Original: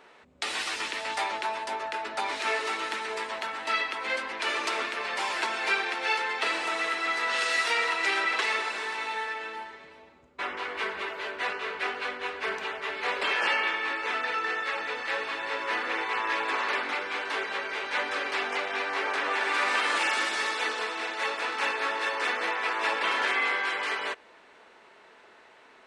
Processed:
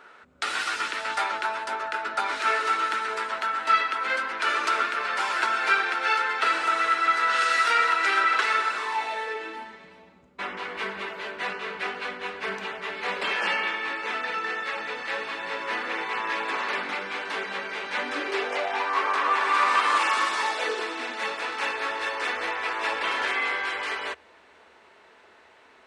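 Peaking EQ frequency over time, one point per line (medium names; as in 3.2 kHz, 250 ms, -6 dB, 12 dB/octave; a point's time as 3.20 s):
peaking EQ +13.5 dB 0.34 oct
8.73 s 1.4 kHz
9.77 s 190 Hz
17.94 s 190 Hz
18.91 s 1.1 kHz
20.37 s 1.1 kHz
20.83 s 340 Hz
21.99 s 77 Hz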